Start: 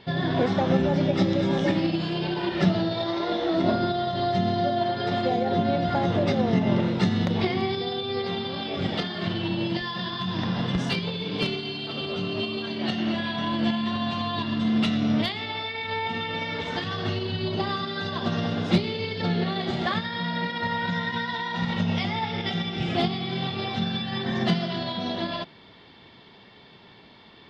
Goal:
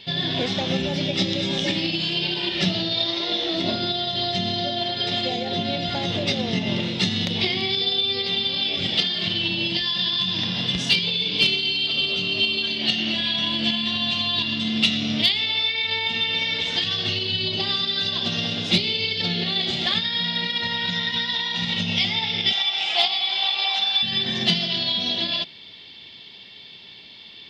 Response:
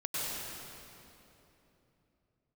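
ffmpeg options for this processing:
-filter_complex "[0:a]asettb=1/sr,asplit=3[link_01][link_02][link_03];[link_01]atrim=end=22.534[link_04];[link_02]atrim=start=22.53:end=24.03,asetpts=PTS-STARTPTS,afade=type=in:duration=0.004:curve=qsin,afade=type=out:start_time=1.496:duration=0.004:curve=qsin,highpass=frequency=850:width_type=q:width=3.5[link_05];[link_03]atrim=start=24.026[link_06];[link_04][link_05]acrossfade=duration=0.004:curve1=hsin:curve2=qsin[link_07];[link_07][link_06]acrossfade=duration=0.004:curve1=qsin:curve2=hsin,highshelf=frequency=2000:width_type=q:width=1.5:gain=13,volume=-3dB"

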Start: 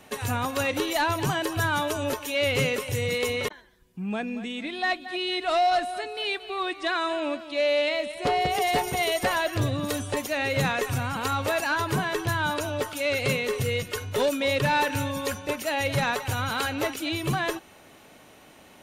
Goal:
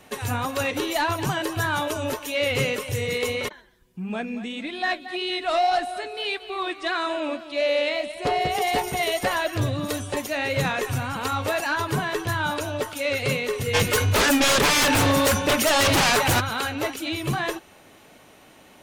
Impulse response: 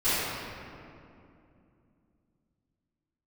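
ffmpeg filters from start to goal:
-filter_complex "[0:a]asplit=3[link_01][link_02][link_03];[link_01]afade=type=out:start_time=13.73:duration=0.02[link_04];[link_02]aeval=exprs='0.15*sin(PI/2*3.16*val(0)/0.15)':channel_layout=same,afade=type=in:start_time=13.73:duration=0.02,afade=type=out:start_time=16.39:duration=0.02[link_05];[link_03]afade=type=in:start_time=16.39:duration=0.02[link_06];[link_04][link_05][link_06]amix=inputs=3:normalize=0,flanger=delay=1.5:depth=8.6:regen=-61:speed=1.7:shape=triangular,volume=5dB"

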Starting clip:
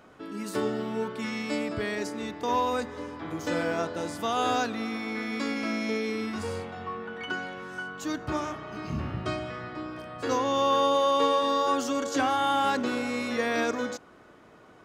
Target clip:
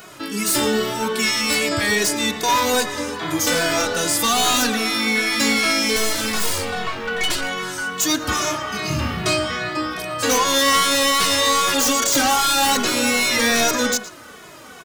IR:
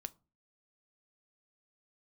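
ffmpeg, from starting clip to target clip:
-filter_complex "[0:a]crystalizer=i=8:c=0,asettb=1/sr,asplit=3[link_01][link_02][link_03];[link_01]atrim=end=5.964[link_04];[link_02]atrim=start=5.96:end=7.41,asetpts=PTS-STARTPTS,afade=type=in:duration=0.004:curve=qsin,afade=type=out:start_time=1.446:duration=0.004:curve=qsin,aeval=exprs='0.211*(cos(1*acos(clip(val(0)/0.211,-1,1)))-cos(1*PI/2))+0.0944*(cos(4*acos(clip(val(0)/0.211,-1,1)))-cos(4*PI/2))':channel_layout=same[link_05];[link_03]atrim=start=7.406[link_06];[link_04][link_05]acrossfade=duration=0.004:curve1=hsin:curve2=qsin[link_07];[link_07][link_06]acrossfade=duration=0.004:curve1=qsin:curve2=hsin,aeval=exprs='0.447*sin(PI/2*3.98*val(0)/0.447)':channel_layout=same,asplit=2[link_08][link_09];[1:a]atrim=start_sample=2205,highshelf=frequency=4900:gain=-10,adelay=116[link_10];[link_09][link_10]afir=irnorm=-1:irlink=0,volume=-7.5dB[link_11];[link_08][link_11]amix=inputs=2:normalize=0,asplit=2[link_12][link_13];[link_13]adelay=2.3,afreqshift=-2.5[link_14];[link_12][link_14]amix=inputs=2:normalize=1,volume=-4.5dB"

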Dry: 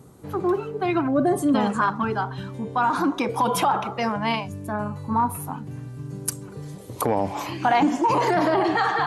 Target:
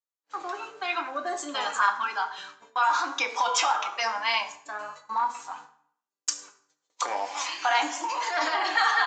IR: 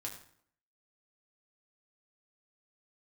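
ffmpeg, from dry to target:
-filter_complex "[0:a]highpass=1100,agate=range=-43dB:threshold=-47dB:ratio=16:detection=peak,aemphasis=mode=production:type=bsi,asplit=3[link_01][link_02][link_03];[link_01]afade=type=out:start_time=7.87:duration=0.02[link_04];[link_02]acompressor=threshold=-29dB:ratio=6,afade=type=in:start_time=7.87:duration=0.02,afade=type=out:start_time=8.34:duration=0.02[link_05];[link_03]afade=type=in:start_time=8.34:duration=0.02[link_06];[link_04][link_05][link_06]amix=inputs=3:normalize=0,flanger=delay=3.3:depth=4:regen=55:speed=0.95:shape=triangular,asplit=2[link_07][link_08];[1:a]atrim=start_sample=2205,lowshelf=frequency=440:gain=6[link_09];[link_08][link_09]afir=irnorm=-1:irlink=0,volume=2.5dB[link_10];[link_07][link_10]amix=inputs=2:normalize=0,aresample=16000,aresample=44100"

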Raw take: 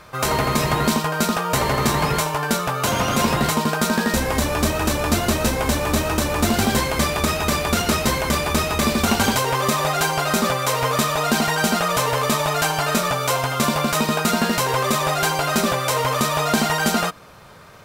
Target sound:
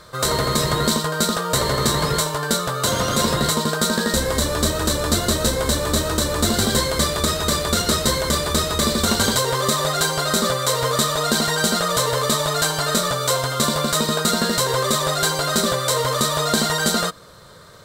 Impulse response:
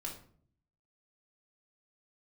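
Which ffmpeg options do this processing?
-af "equalizer=frequency=250:width_type=o:width=0.33:gain=-4,equalizer=frequency=500:width_type=o:width=0.33:gain=4,equalizer=frequency=800:width_type=o:width=0.33:gain=-9,equalizer=frequency=2500:width_type=o:width=0.33:gain=-12,equalizer=frequency=4000:width_type=o:width=0.33:gain=9,equalizer=frequency=8000:width_type=o:width=0.33:gain=7"

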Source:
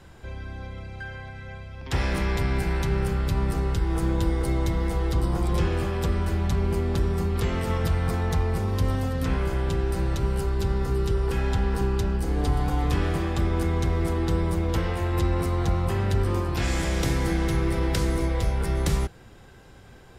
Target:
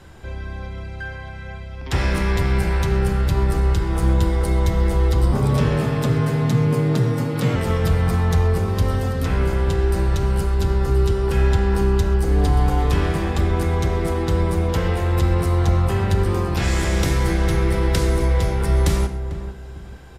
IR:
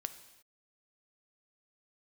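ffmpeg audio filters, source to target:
-filter_complex "[0:a]asettb=1/sr,asplit=3[link_01][link_02][link_03];[link_01]atrim=end=5.324[link_04];[link_02]atrim=start=5.32:end=7.56,asetpts=PTS-STARTPTS,afade=type=in:duration=0.004:curve=qsin,afade=type=out:start_time=2.236:duration=0.004:curve=qsin,afreqshift=71[link_05];[link_03]atrim=start=7.556[link_06];[link_04][link_05]acrossfade=duration=0.004:curve1=hsin:curve2=qsin[link_07];[link_07][link_06]acrossfade=duration=0.004:curve1=qsin:curve2=hsin,asplit=2[link_08][link_09];[link_09]adelay=446,lowpass=frequency=1000:poles=1,volume=-10dB,asplit=2[link_10][link_11];[link_11]adelay=446,lowpass=frequency=1000:poles=1,volume=0.33,asplit=2[link_12][link_13];[link_13]adelay=446,lowpass=frequency=1000:poles=1,volume=0.33,asplit=2[link_14][link_15];[link_15]adelay=446,lowpass=frequency=1000:poles=1,volume=0.33[link_16];[link_08][link_10][link_12][link_14][link_16]amix=inputs=5:normalize=0[link_17];[1:a]atrim=start_sample=2205,atrim=end_sample=3969,asetrate=27783,aresample=44100[link_18];[link_17][link_18]afir=irnorm=-1:irlink=0,volume=4dB"

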